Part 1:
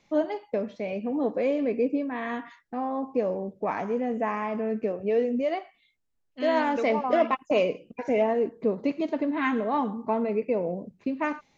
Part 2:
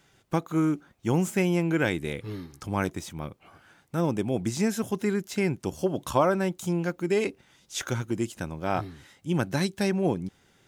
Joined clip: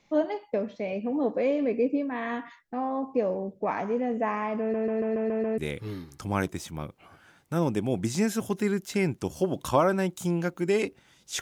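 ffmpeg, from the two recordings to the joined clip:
ffmpeg -i cue0.wav -i cue1.wav -filter_complex "[0:a]apad=whole_dur=11.41,atrim=end=11.41,asplit=7[link_01][link_02][link_03][link_04][link_05][link_06][link_07];[link_01]atrim=end=4.742[link_08];[link_02]atrim=start=4.598:end=4.742[link_09];[link_03]atrim=start=4.598:end=4.742[link_10];[link_04]atrim=start=4.598:end=4.742[link_11];[link_05]atrim=start=4.598:end=4.742[link_12];[link_06]atrim=start=4.598:end=4.742[link_13];[link_07]atrim=start=4.598:end=4.742[link_14];[1:a]atrim=start=1.998:end=7.83[link_15];[link_08][link_09]acrossfade=duration=0.004:curve1=hsin:curve2=hsin[link_16];[link_16][link_10]acrossfade=duration=0.004:curve1=hsin:curve2=hsin[link_17];[link_17][link_11]acrossfade=duration=0.004:curve1=hsin:curve2=hsin[link_18];[link_18][link_12]acrossfade=duration=0.004:curve1=hsin:curve2=hsin[link_19];[link_19][link_13]acrossfade=duration=0.004:curve1=hsin:curve2=hsin[link_20];[link_20][link_14]acrossfade=duration=0.004:curve1=hsin:curve2=hsin[link_21];[link_21][link_15]acrossfade=duration=0.004:curve1=hsin:curve2=hsin" out.wav

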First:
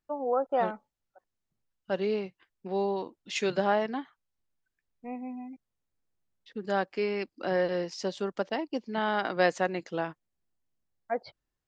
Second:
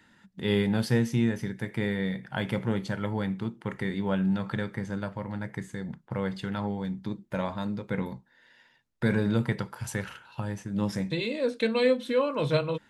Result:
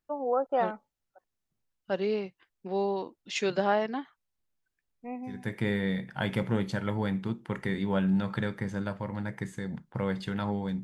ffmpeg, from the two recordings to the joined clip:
ffmpeg -i cue0.wav -i cue1.wav -filter_complex "[0:a]apad=whole_dur=10.83,atrim=end=10.83,atrim=end=5.49,asetpts=PTS-STARTPTS[link_01];[1:a]atrim=start=1.39:end=6.99,asetpts=PTS-STARTPTS[link_02];[link_01][link_02]acrossfade=duration=0.26:curve1=tri:curve2=tri" out.wav

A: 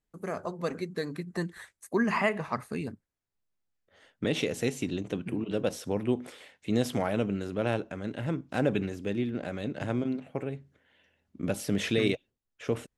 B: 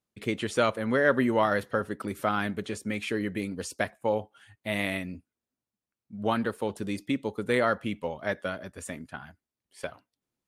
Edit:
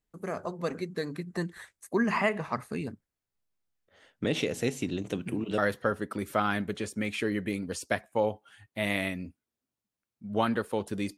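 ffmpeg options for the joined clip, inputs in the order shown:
ffmpeg -i cue0.wav -i cue1.wav -filter_complex "[0:a]asettb=1/sr,asplit=3[link_01][link_02][link_03];[link_01]atrim=end=5.014[link_04];[link_02]atrim=start=5.01:end=5.58,asetpts=PTS-STARTPTS,afade=type=in:duration=0.004:curve=qsin,afade=type=out:start_time=0.566:duration=0.004:curve=qsin,highshelf=frequency=5200:gain=9.5[link_05];[link_03]atrim=start=5.576[link_06];[link_04][link_05]acrossfade=duration=0.004:curve1=hsin:curve2=qsin[link_07];[link_07][link_06]acrossfade=duration=0.004:curve1=qsin:curve2=hsin,apad=whole_dur=11.17,atrim=end=11.17,atrim=end=5.582[link_08];[1:a]atrim=start=1.468:end=7.06[link_09];[link_08][link_09]acrossfade=duration=0.004:curve1=hsin:curve2=hsin" out.wav

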